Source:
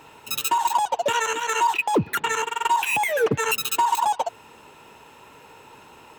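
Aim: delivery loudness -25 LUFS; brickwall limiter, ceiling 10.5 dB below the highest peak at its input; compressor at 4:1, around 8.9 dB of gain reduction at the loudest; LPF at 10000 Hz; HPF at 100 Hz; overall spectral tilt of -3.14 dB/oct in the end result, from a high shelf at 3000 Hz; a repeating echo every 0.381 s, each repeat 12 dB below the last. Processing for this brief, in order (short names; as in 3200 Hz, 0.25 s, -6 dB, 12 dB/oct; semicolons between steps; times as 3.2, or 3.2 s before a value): HPF 100 Hz; LPF 10000 Hz; high shelf 3000 Hz +5 dB; compressor 4:1, threshold -27 dBFS; limiter -26 dBFS; feedback echo 0.381 s, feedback 25%, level -12 dB; gain +9 dB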